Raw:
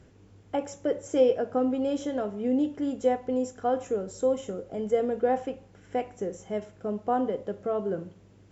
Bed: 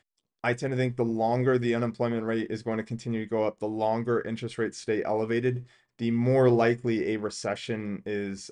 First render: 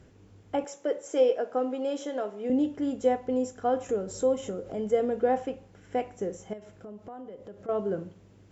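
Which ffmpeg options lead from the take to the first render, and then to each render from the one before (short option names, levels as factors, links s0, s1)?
-filter_complex "[0:a]asettb=1/sr,asplit=3[s0][s1][s2];[s0]atrim=end=0.644[s3];[s1]atrim=start=0.64:end=2.5,asetpts=PTS-STARTPTS,afade=t=in:d=0.004:c=qsin,afade=t=out:st=1.856:d=0.004:c=qsin,highpass=360[s4];[s2]atrim=start=2.496[s5];[s3][s4]acrossfade=d=0.004:c1=hsin:c2=qsin[s6];[s6][s5]acrossfade=d=0.004:c1=qsin:c2=hsin,asettb=1/sr,asplit=3[s7][s8][s9];[s7]atrim=end=3.894[s10];[s8]atrim=start=3.89:end=5.32,asetpts=PTS-STARTPTS,afade=t=in:d=0.004:c=qsin,afade=t=out:st=1.426:d=0.004:c=qsin,acompressor=mode=upward:threshold=0.0251:ratio=2.5:attack=3.2:release=140:knee=2.83:detection=peak[s11];[s9]atrim=start=5.316[s12];[s10][s11]acrossfade=d=0.004:c1=hsin:c2=qsin[s13];[s13][s12]acrossfade=d=0.004:c1=qsin:c2=hsin,asettb=1/sr,asplit=3[s14][s15][s16];[s14]atrim=end=6.534[s17];[s15]atrim=start=6.53:end=7.69,asetpts=PTS-STARTPTS,afade=t=in:d=0.004:c=qsin,afade=t=out:st=1.156:d=0.004:c=qsin,acompressor=threshold=0.00794:ratio=4:attack=3.2:release=140:knee=1:detection=peak[s18];[s16]atrim=start=7.686[s19];[s17][s18]acrossfade=d=0.004:c1=hsin:c2=qsin[s20];[s20][s19]acrossfade=d=0.004:c1=qsin:c2=hsin"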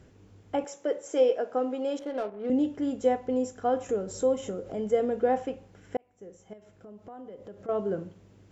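-filter_complex "[0:a]asettb=1/sr,asplit=3[s0][s1][s2];[s0]atrim=end=1.994[s3];[s1]atrim=start=1.99:end=2.5,asetpts=PTS-STARTPTS,afade=t=in:d=0.004:c=qsin,afade=t=out:st=0.506:d=0.004:c=qsin,adynamicsmooth=sensitivity=8:basefreq=770[s4];[s2]atrim=start=2.496[s5];[s3][s4]acrossfade=d=0.004:c1=hsin:c2=qsin[s6];[s6][s5]acrossfade=d=0.004:c1=qsin:c2=hsin,asplit=2[s7][s8];[s7]atrim=end=5.97,asetpts=PTS-STARTPTS,afade=t=out:st=5.966:d=0.004:c=hsin[s9];[s8]atrim=start=5.97,asetpts=PTS-STARTPTS,afade=t=in:d=1.45[s10];[s9][s10]concat=n=2:v=0:a=1"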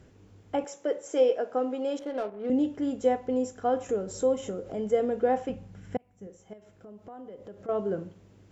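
-filter_complex "[0:a]asettb=1/sr,asplit=3[s0][s1][s2];[s0]atrim=end=5.494[s3];[s1]atrim=start=5.49:end=6.27,asetpts=PTS-STARTPTS,afade=t=in:d=0.004:c=qsin,afade=t=out:st=0.776:d=0.004:c=qsin,lowshelf=f=250:t=q:w=1.5:g=8[s4];[s2]atrim=start=6.266[s5];[s3][s4]acrossfade=d=0.004:c1=hsin:c2=qsin[s6];[s6][s5]acrossfade=d=0.004:c1=qsin:c2=hsin"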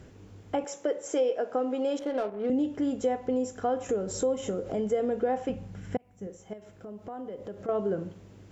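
-filter_complex "[0:a]asplit=2[s0][s1];[s1]alimiter=limit=0.0841:level=0:latency=1:release=95,volume=0.794[s2];[s0][s2]amix=inputs=2:normalize=0,acompressor=threshold=0.0398:ratio=2"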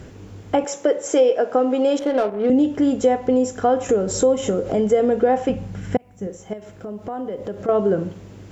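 -af "volume=3.35"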